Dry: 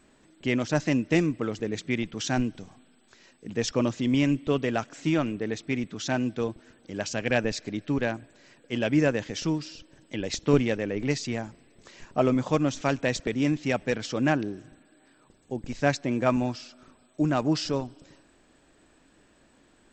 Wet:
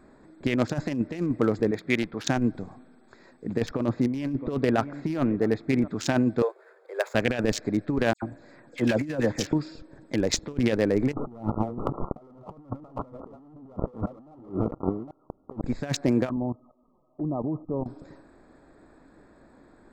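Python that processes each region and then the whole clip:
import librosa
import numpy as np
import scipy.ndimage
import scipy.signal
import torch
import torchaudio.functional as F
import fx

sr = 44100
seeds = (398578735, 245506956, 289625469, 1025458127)

y = fx.chain(x, sr, fx.lowpass(hz=4200.0, slope=12),
    fx.low_shelf(hz=330.0, db=-8.0), at=(1.71, 2.27))
y = fx.chain(y, sr, fx.air_absorb(metres=160.0),
    fx.echo_single(ms=662, db=-21.5), at=(3.6, 5.88))
y = fx.chain(y, sr, fx.median_filter(points=9),
    fx.cheby_ripple_highpass(hz=380.0, ripple_db=3),
    fx.high_shelf(hz=3400.0, db=5.0), at=(6.42, 7.15))
y = fx.chain(y, sr, fx.notch(hz=420.0, q=7.8),
    fx.dispersion(late='lows', ms=93.0, hz=2900.0), at=(8.13, 9.53))
y = fx.chain(y, sr, fx.reverse_delay(ms=398, wet_db=-7.0),
    fx.leveller(passes=5),
    fx.brickwall_lowpass(high_hz=1400.0), at=(11.13, 15.63))
y = fx.chain(y, sr, fx.level_steps(step_db=17),
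    fx.brickwall_lowpass(high_hz=1300.0),
    fx.env_flanger(rest_ms=7.6, full_db=-34.0), at=(16.29, 17.86))
y = fx.wiener(y, sr, points=15)
y = fx.bass_treble(y, sr, bass_db=-2, treble_db=3)
y = fx.over_compress(y, sr, threshold_db=-28.0, ratio=-0.5)
y = F.gain(torch.from_numpy(y), 1.0).numpy()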